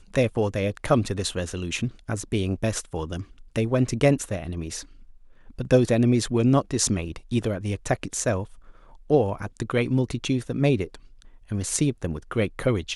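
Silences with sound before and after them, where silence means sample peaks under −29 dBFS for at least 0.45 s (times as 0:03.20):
0:04.81–0:05.59
0:08.44–0:09.10
0:10.95–0:11.51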